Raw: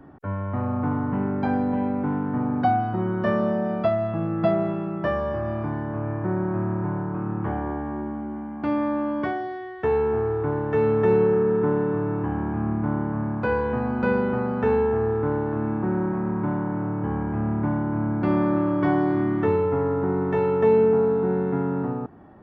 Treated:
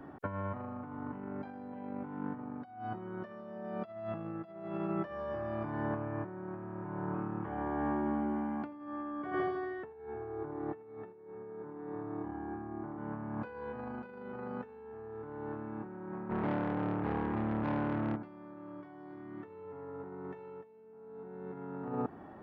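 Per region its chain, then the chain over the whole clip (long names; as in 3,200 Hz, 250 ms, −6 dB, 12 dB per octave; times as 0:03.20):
0:08.64–0:12.98: low-pass filter 1,200 Hz 6 dB per octave + repeating echo 79 ms, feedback 56%, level −3.5 dB
0:16.30–0:18.17: tube saturation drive 27 dB, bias 0.8 + highs frequency-modulated by the lows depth 0.17 ms
whole clip: compressor whose output falls as the input rises −30 dBFS, ratio −0.5; low-shelf EQ 170 Hz −9.5 dB; level −5.5 dB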